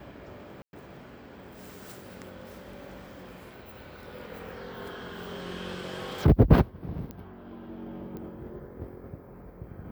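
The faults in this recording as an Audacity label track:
0.620000	0.730000	dropout 111 ms
7.110000	7.110000	pop -25 dBFS
8.170000	8.170000	pop -28 dBFS

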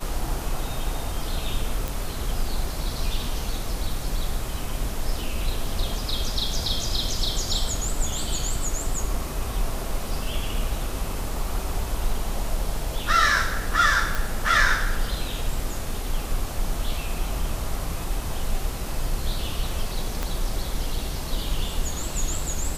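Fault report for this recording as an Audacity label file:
1.880000	1.880000	pop
14.150000	14.150000	pop
20.230000	20.230000	pop -12 dBFS

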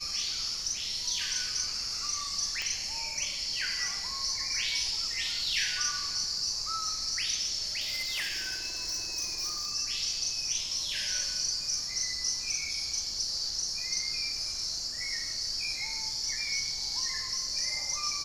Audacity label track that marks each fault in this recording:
2.620000	2.620000	pop -19 dBFS
7.800000	9.710000	clipped -29 dBFS

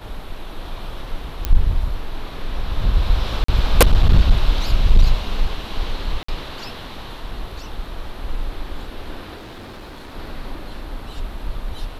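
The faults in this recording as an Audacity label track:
1.450000	1.450000	pop -5 dBFS
3.440000	3.480000	dropout 44 ms
6.230000	6.280000	dropout 54 ms
9.360000	10.150000	clipped -33 dBFS

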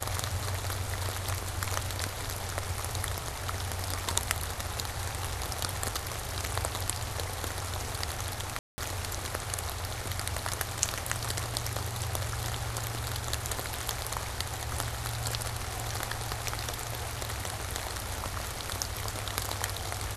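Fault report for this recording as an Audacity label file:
8.590000	8.780000	dropout 190 ms

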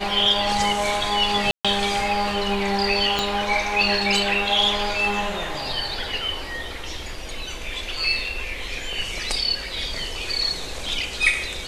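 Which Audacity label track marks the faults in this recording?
1.510000	1.650000	dropout 136 ms
3.190000	3.190000	pop -8 dBFS

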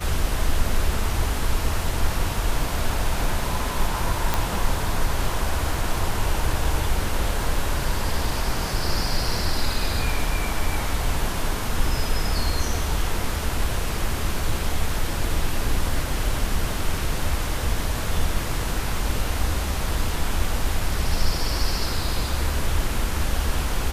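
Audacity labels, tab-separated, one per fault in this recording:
4.340000	4.340000	pop

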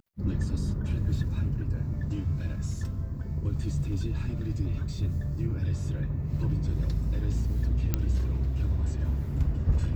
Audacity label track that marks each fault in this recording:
7.940000	7.940000	pop -12 dBFS

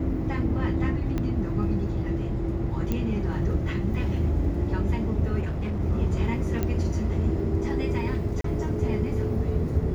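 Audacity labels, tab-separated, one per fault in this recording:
1.180000	1.180000	pop -17 dBFS
2.920000	2.920000	pop -15 dBFS
5.390000	5.810000	clipped -25 dBFS
6.630000	6.630000	pop -14 dBFS
8.410000	8.440000	dropout 33 ms

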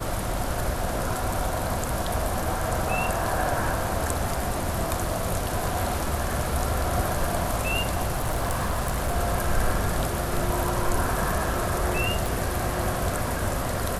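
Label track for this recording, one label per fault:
8.140000	9.150000	clipped -21 dBFS
12.260000	12.260000	pop

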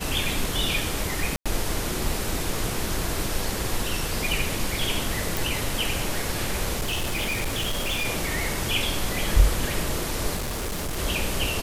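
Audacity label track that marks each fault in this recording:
1.360000	1.460000	dropout 96 ms
5.370000	5.370000	pop
6.790000	8.060000	clipped -22.5 dBFS
10.360000	10.990000	clipped -26 dBFS

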